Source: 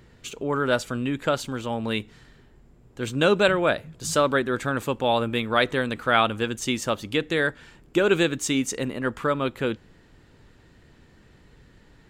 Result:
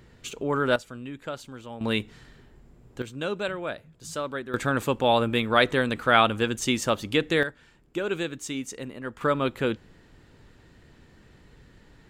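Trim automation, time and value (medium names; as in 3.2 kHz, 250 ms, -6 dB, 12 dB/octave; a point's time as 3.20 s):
-0.5 dB
from 0.76 s -11 dB
from 1.81 s +1 dB
from 3.02 s -10.5 dB
from 4.54 s +1 dB
from 7.43 s -8.5 dB
from 9.21 s 0 dB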